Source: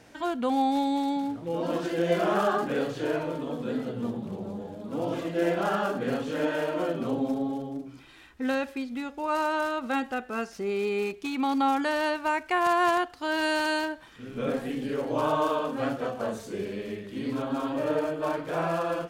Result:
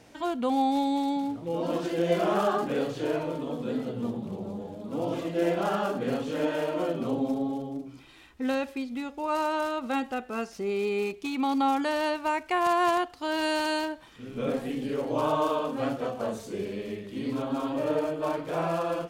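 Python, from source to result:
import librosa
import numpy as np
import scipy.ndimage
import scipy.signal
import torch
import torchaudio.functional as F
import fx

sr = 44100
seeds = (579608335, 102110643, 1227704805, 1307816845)

y = fx.peak_eq(x, sr, hz=1600.0, db=-5.0, octaves=0.5)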